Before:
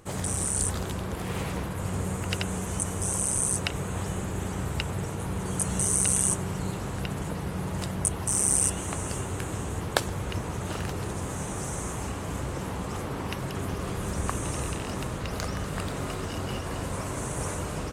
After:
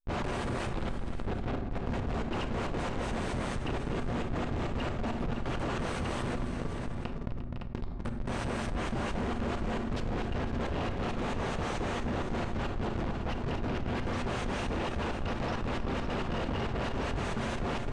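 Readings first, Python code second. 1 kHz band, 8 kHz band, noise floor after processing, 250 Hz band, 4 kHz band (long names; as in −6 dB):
−0.5 dB, −24.5 dB, −37 dBFS, −0.5 dB, −4.0 dB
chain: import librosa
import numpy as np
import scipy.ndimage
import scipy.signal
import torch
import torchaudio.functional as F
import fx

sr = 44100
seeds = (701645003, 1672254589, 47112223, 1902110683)

y = scipy.signal.sosfilt(scipy.signal.butter(12, 2500.0, 'highpass', fs=sr, output='sos'), x)
y = fx.tilt_eq(y, sr, slope=3.0)
y = fx.rider(y, sr, range_db=4, speed_s=2.0)
y = fx.tremolo_shape(y, sr, shape='saw_up', hz=4.5, depth_pct=90)
y = 10.0 ** (-15.5 / 20.0) * np.tanh(y / 10.0 ** (-15.5 / 20.0))
y = fx.mod_noise(y, sr, seeds[0], snr_db=31)
y = fx.schmitt(y, sr, flips_db=-33.5)
y = fx.spacing_loss(y, sr, db_at_10k=33)
y = fx.echo_multitap(y, sr, ms=(254, 351, 507, 561, 723), db=(-12.5, -19.5, -16.0, -15.0, -18.0))
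y = fx.rev_fdn(y, sr, rt60_s=0.76, lf_ratio=1.45, hf_ratio=0.55, size_ms=25.0, drr_db=9.0)
y = fx.env_flatten(y, sr, amount_pct=70)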